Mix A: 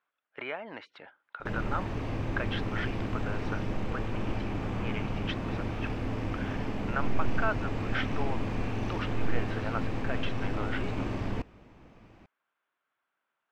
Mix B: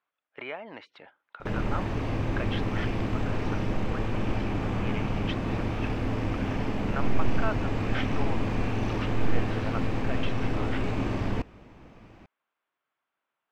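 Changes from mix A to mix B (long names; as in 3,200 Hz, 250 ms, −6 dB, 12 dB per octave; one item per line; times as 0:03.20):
speech: add parametric band 1,500 Hz −4.5 dB 0.42 octaves
background +4.0 dB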